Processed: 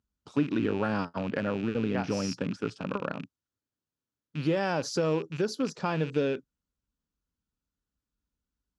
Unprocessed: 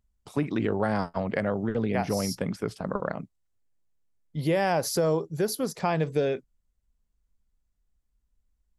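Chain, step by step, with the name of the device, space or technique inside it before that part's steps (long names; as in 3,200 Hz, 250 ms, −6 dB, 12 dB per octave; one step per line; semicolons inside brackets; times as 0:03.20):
car door speaker with a rattle (loose part that buzzes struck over −37 dBFS, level −28 dBFS; loudspeaker in its box 88–6,900 Hz, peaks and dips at 280 Hz +6 dB, 700 Hz −6 dB, 1,400 Hz +5 dB, 2,100 Hz −8 dB)
level −2.5 dB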